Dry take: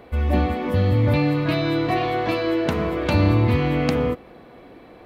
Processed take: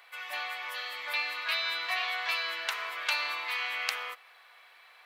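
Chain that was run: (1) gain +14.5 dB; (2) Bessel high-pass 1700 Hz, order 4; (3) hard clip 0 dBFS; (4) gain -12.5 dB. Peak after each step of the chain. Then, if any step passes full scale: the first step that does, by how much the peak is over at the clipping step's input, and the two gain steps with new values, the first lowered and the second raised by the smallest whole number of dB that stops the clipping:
+8.0, +3.0, 0.0, -12.5 dBFS; step 1, 3.0 dB; step 1 +11.5 dB, step 4 -9.5 dB

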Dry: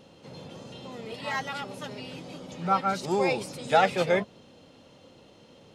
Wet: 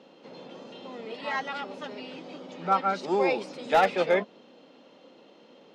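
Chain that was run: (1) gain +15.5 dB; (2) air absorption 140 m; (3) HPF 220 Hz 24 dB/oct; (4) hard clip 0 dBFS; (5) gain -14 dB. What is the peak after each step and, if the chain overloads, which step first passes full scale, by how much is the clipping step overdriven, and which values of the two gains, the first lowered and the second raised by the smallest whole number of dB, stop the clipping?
+8.5, +7.5, +6.5, 0.0, -14.0 dBFS; step 1, 6.5 dB; step 1 +8.5 dB, step 5 -7 dB

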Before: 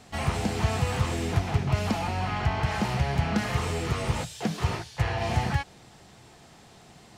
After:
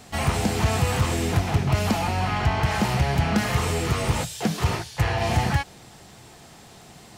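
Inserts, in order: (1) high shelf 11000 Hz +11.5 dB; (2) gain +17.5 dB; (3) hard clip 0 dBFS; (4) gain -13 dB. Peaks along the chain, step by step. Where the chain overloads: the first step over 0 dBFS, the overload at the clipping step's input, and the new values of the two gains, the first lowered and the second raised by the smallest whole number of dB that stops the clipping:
-11.5, +6.0, 0.0, -13.0 dBFS; step 2, 6.0 dB; step 2 +11.5 dB, step 4 -7 dB

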